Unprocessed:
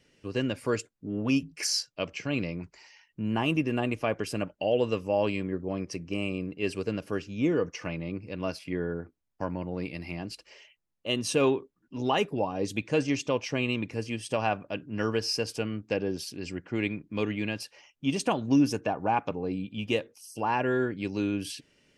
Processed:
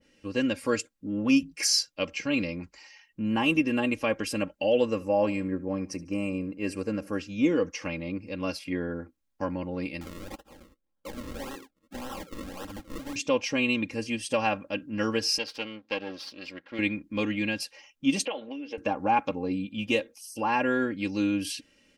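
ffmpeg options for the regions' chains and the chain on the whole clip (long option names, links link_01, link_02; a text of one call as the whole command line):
ffmpeg -i in.wav -filter_complex "[0:a]asettb=1/sr,asplit=3[link_01][link_02][link_03];[link_01]atrim=end=4.854[link_04];[link_02]atrim=start=4.85:end=7.19,asetpts=PTS-STARTPTS,afade=type=in:duration=0.004:curve=qsin,afade=type=out:start_time=2.336:duration=0.004:curve=qsin,equalizer=frequency=3400:width=1.6:gain=-13,aecho=1:1:74|148|222:0.1|0.032|0.0102,atrim=end_sample=103194[link_05];[link_03]atrim=start=7.186[link_06];[link_04][link_05]acrossfade=duration=0.004:curve1=hsin:curve2=qsin[link_07];[link_07][link_06]acrossfade=duration=0.004:curve1=qsin:curve2=hsin,asettb=1/sr,asplit=3[link_08][link_09][link_10];[link_08]atrim=end=10.014[link_11];[link_09]atrim=start=10.01:end=13.16,asetpts=PTS-STARTPTS,afade=type=in:duration=0.004:curve=qsin,afade=type=out:start_time=3.146:duration=0.004:curve=qsin,acompressor=threshold=-34dB:ratio=10:attack=3.2:release=140:knee=1:detection=peak,acrusher=samples=38:mix=1:aa=0.000001:lfo=1:lforange=38:lforate=1.8,aeval=exprs='(mod(42.2*val(0)+1,2)-1)/42.2':channel_layout=same[link_12];[link_10]atrim=start=13.156[link_13];[link_11][link_12]acrossfade=duration=0.004:curve1=hsin:curve2=qsin[link_14];[link_14][link_13]acrossfade=duration=0.004:curve1=qsin:curve2=hsin,asettb=1/sr,asplit=3[link_15][link_16][link_17];[link_15]atrim=end=15.384[link_18];[link_16]atrim=start=15.38:end=16.79,asetpts=PTS-STARTPTS,afade=type=in:duration=0.004:curve=qsin,afade=type=out:start_time=1.406:duration=0.004:curve=qsin,aeval=exprs='if(lt(val(0),0),0.251*val(0),val(0))':channel_layout=same,highpass=frequency=520:poles=1,highshelf=frequency=5900:width_type=q:width=1.5:gain=-13.5[link_19];[link_17]atrim=start=16.786[link_20];[link_18][link_19]acrossfade=duration=0.004:curve1=hsin:curve2=qsin[link_21];[link_21][link_20]acrossfade=duration=0.004:curve1=qsin:curve2=hsin,asettb=1/sr,asplit=3[link_22][link_23][link_24];[link_22]atrim=end=18.254[link_25];[link_23]atrim=start=18.25:end=18.78,asetpts=PTS-STARTPTS,afade=type=in:duration=0.004:curve=qsin,afade=type=out:start_time=0.526:duration=0.004:curve=qsin,acompressor=threshold=-32dB:ratio=10:attack=3.2:release=140:knee=1:detection=peak,highpass=400,equalizer=frequency=470:width_type=q:width=4:gain=9,equalizer=frequency=670:width_type=q:width=4:gain=7,equalizer=frequency=1200:width_type=q:width=4:gain=-3,equalizer=frequency=2100:width_type=q:width=4:gain=7,equalizer=frequency=3000:width_type=q:width=4:gain=9,lowpass=frequency=3600:width=0.5412,lowpass=frequency=3600:width=1.3066[link_26];[link_24]atrim=start=18.776[link_27];[link_25][link_26]acrossfade=duration=0.004:curve1=hsin:curve2=qsin[link_28];[link_28][link_27]acrossfade=duration=0.004:curve1=qsin:curve2=hsin,bandreject=frequency=720:width=12,aecho=1:1:3.7:0.64,adynamicequalizer=threshold=0.0126:dfrequency=1800:dqfactor=0.7:tfrequency=1800:tqfactor=0.7:attack=5:release=100:ratio=0.375:range=1.5:mode=boostabove:tftype=highshelf" out.wav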